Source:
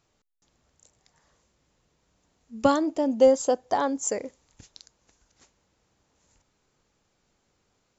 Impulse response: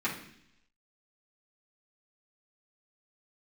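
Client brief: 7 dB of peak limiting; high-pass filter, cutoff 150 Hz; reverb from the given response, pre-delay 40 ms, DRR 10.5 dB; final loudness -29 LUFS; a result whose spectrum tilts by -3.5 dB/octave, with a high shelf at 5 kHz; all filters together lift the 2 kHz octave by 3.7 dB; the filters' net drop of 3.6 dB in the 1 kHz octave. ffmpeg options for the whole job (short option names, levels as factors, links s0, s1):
-filter_complex "[0:a]highpass=150,equalizer=f=1000:t=o:g=-6.5,equalizer=f=2000:t=o:g=9,highshelf=f=5000:g=-9,alimiter=limit=0.178:level=0:latency=1,asplit=2[s0][s1];[1:a]atrim=start_sample=2205,adelay=40[s2];[s1][s2]afir=irnorm=-1:irlink=0,volume=0.119[s3];[s0][s3]amix=inputs=2:normalize=0,volume=0.841"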